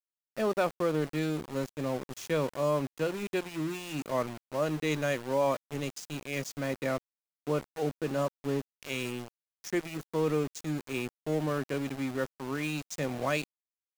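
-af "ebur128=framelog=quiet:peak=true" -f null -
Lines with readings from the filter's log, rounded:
Integrated loudness:
  I:         -32.8 LUFS
  Threshold: -42.9 LUFS
Loudness range:
  LRA:         2.8 LU
  Threshold: -53.1 LUFS
  LRA low:   -34.5 LUFS
  LRA high:  -31.7 LUFS
True peak:
  Peak:      -16.9 dBFS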